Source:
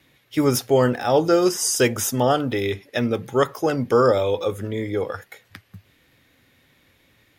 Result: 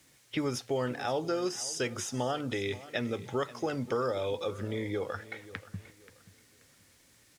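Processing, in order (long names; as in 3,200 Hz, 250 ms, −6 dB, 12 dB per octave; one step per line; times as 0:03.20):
low-pass that shuts in the quiet parts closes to 1,800 Hz, open at −18 dBFS
noise gate −53 dBFS, range −11 dB
high-shelf EQ 2,000 Hz +7 dB
downward compressor 3 to 1, threshold −40 dBFS, peak gain reduction 20.5 dB
background noise violet −54 dBFS
high-frequency loss of the air 72 metres
repeating echo 531 ms, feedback 31%, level −17.5 dB
level +4.5 dB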